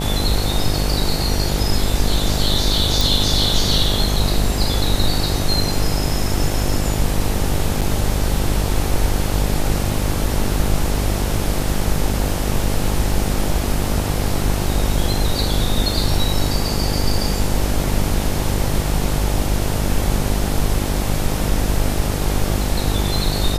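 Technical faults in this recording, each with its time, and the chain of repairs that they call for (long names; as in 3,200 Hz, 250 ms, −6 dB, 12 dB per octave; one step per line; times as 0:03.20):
mains buzz 50 Hz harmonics 18 −22 dBFS
0:03.01: click
0:07.81–0:07.82: drop-out 7 ms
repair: click removal
hum removal 50 Hz, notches 18
repair the gap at 0:07.81, 7 ms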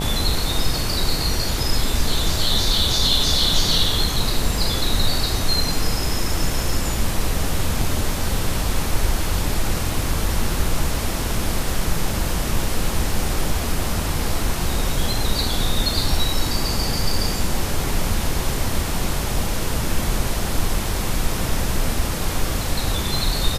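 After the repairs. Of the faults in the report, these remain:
none of them is left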